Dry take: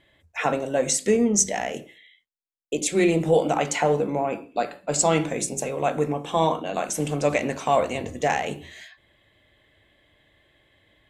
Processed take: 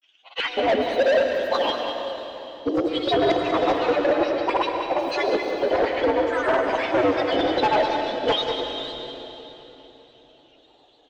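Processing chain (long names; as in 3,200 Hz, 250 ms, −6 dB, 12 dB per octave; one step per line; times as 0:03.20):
partials spread apart or drawn together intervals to 128%
bass and treble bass −8 dB, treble −5 dB
in parallel at −1 dB: speech leveller within 4 dB 0.5 s
on the sum: auto-filter high-pass square 2.4 Hz 560–2,200 Hz
hollow resonant body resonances 300/3,400 Hz, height 18 dB, ringing for 30 ms
granular cloud, pitch spread up and down by 3 semitones
gain into a clipping stage and back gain 16.5 dB
high-frequency loss of the air 140 metres
single-tap delay 193 ms −9 dB
on a send at −4.5 dB: convolution reverb RT60 3.5 s, pre-delay 96 ms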